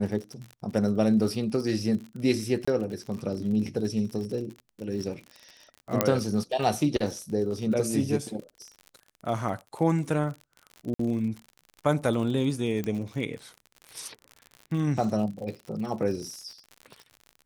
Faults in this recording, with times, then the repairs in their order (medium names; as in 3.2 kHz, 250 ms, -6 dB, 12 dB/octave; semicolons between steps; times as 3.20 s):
crackle 54 per s -35 dBFS
2.65–2.67 s: dropout 25 ms
6.01 s: pop -5 dBFS
10.94–10.99 s: dropout 54 ms
12.84 s: pop -18 dBFS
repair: de-click; interpolate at 2.65 s, 25 ms; interpolate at 10.94 s, 54 ms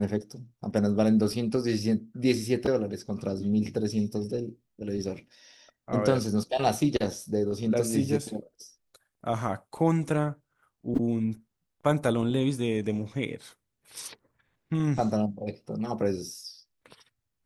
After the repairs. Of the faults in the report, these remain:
12.84 s: pop